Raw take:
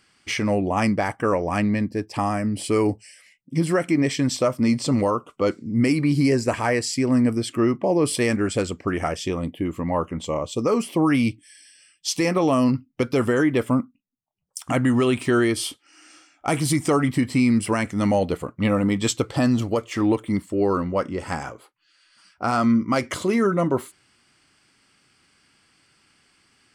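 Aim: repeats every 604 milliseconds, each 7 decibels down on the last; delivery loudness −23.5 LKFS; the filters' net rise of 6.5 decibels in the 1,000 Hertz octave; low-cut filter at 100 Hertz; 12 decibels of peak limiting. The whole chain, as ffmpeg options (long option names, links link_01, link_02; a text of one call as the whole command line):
ffmpeg -i in.wav -af "highpass=100,equalizer=frequency=1000:width_type=o:gain=8.5,alimiter=limit=-16dB:level=0:latency=1,aecho=1:1:604|1208|1812|2416|3020:0.447|0.201|0.0905|0.0407|0.0183,volume=2.5dB" out.wav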